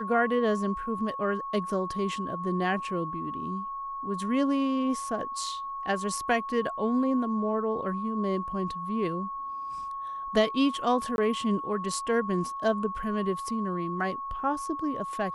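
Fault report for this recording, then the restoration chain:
whistle 1,100 Hz −33 dBFS
0:11.16–0:11.18: drop-out 21 ms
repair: notch filter 1,100 Hz, Q 30
repair the gap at 0:11.16, 21 ms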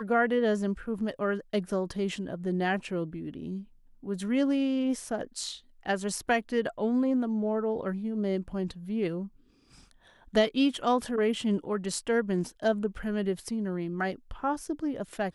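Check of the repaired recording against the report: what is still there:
none of them is left

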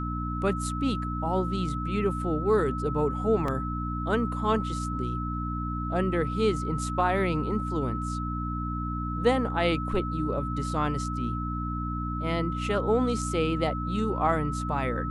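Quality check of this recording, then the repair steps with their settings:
mains hum 60 Hz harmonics 5 −32 dBFS
whistle 1,300 Hz −34 dBFS
0:03.48: drop-out 2.8 ms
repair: notch filter 1,300 Hz, Q 30
hum removal 60 Hz, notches 5
repair the gap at 0:03.48, 2.8 ms

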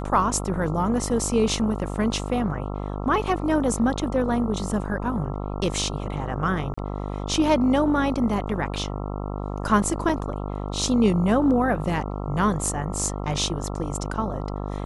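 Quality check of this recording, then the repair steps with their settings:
mains buzz 50 Hz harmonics 27 −30 dBFS
0:06.74–0:06.78: drop-out 35 ms
0:10.09–0:10.10: drop-out 5 ms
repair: hum removal 50 Hz, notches 27
repair the gap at 0:06.74, 35 ms
repair the gap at 0:10.09, 5 ms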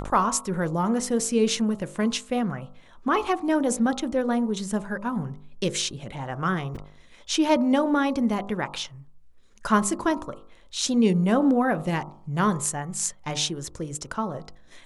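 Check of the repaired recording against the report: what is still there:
none of them is left

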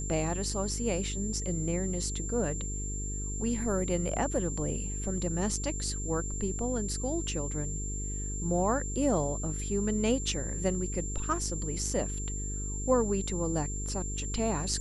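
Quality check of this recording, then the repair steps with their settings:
mains buzz 50 Hz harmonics 9 −36 dBFS
whistle 7,300 Hz −38 dBFS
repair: notch filter 7,300 Hz, Q 30
hum removal 50 Hz, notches 9

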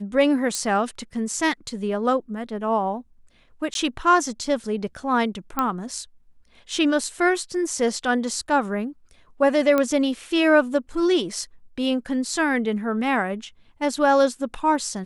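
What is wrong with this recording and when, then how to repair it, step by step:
0:00.55: click −12 dBFS
0:03.74–0:03.75: drop-out 12 ms
0:05.59: click −9 dBFS
0:09.78: click −9 dBFS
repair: click removal
repair the gap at 0:03.74, 12 ms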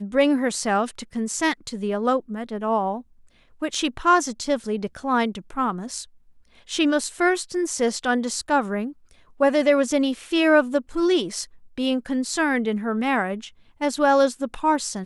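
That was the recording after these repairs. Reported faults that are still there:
0:09.78: click

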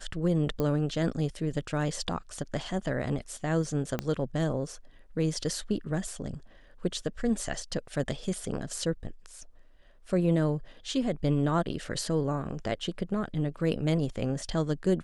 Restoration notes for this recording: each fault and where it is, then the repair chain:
0:00.60: click −18 dBFS
0:03.99: click −16 dBFS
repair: click removal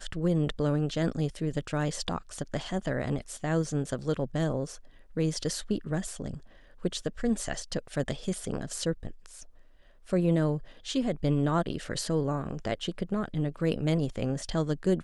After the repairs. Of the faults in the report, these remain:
0:03.99: click

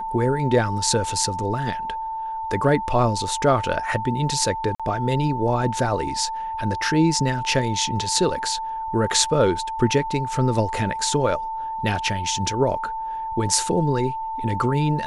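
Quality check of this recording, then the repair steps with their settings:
whistle 890 Hz −26 dBFS
0:04.75–0:04.80: drop-out 46 ms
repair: notch filter 890 Hz, Q 30
repair the gap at 0:04.75, 46 ms

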